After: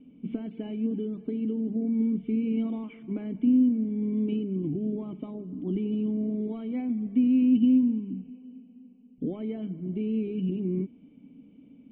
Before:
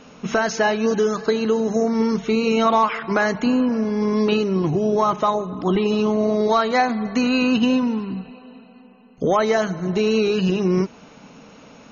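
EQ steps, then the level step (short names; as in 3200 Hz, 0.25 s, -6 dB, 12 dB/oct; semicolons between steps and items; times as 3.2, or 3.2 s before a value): vocal tract filter i; bell 2900 Hz -9.5 dB 2.5 oct; 0.0 dB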